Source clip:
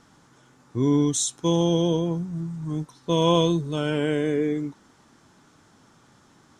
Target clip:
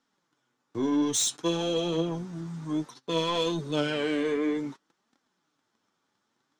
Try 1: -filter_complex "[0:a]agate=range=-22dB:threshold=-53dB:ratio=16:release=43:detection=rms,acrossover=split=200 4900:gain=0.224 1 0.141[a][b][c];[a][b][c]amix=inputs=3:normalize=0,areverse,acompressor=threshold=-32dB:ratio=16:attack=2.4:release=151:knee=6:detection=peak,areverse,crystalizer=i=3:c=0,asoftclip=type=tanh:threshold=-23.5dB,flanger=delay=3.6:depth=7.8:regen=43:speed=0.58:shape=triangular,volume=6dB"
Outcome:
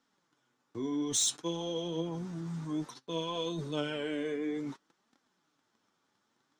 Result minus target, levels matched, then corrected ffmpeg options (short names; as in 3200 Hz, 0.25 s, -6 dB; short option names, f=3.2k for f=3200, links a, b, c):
compressor: peak gain reduction +11 dB
-filter_complex "[0:a]agate=range=-22dB:threshold=-53dB:ratio=16:release=43:detection=rms,acrossover=split=200 4900:gain=0.224 1 0.141[a][b][c];[a][b][c]amix=inputs=3:normalize=0,areverse,acompressor=threshold=-20.5dB:ratio=16:attack=2.4:release=151:knee=6:detection=peak,areverse,crystalizer=i=3:c=0,asoftclip=type=tanh:threshold=-23.5dB,flanger=delay=3.6:depth=7.8:regen=43:speed=0.58:shape=triangular,volume=6dB"